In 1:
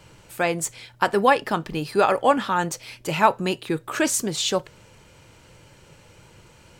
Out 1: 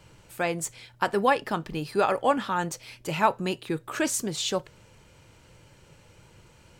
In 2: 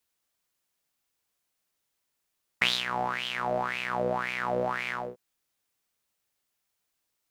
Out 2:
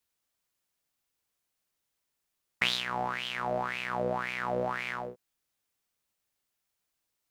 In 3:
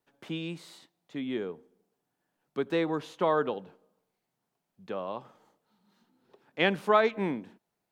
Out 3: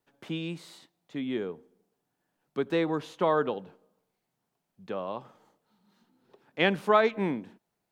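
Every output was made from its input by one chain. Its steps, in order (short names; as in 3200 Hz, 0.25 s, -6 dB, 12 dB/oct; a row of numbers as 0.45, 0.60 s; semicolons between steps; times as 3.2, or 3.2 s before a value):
low shelf 160 Hz +3 dB; normalise peaks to -9 dBFS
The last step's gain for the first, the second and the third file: -5.0, -2.5, +0.5 dB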